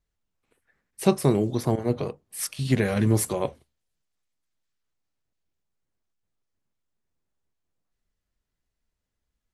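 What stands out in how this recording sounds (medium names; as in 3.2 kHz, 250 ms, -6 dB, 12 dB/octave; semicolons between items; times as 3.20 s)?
noise floor -83 dBFS; spectral tilt -6.0 dB/octave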